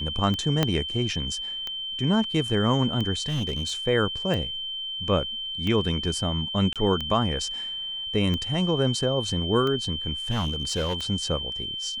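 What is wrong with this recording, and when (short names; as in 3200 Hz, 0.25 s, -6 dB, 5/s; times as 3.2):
tick 45 rpm -17 dBFS
tone 3100 Hz -30 dBFS
0.63 pop -7 dBFS
3.28–3.73 clipped -23 dBFS
6.73–6.76 gap 27 ms
10.3–10.96 clipped -22 dBFS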